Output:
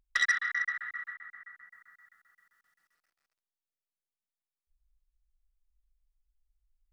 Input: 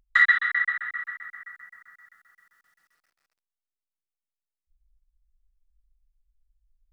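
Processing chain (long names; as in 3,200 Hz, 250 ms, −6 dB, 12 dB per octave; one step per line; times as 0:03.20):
0:01.13–0:01.72: high-shelf EQ 5,400 Hz −7.5 dB
saturating transformer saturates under 2,700 Hz
level −6.5 dB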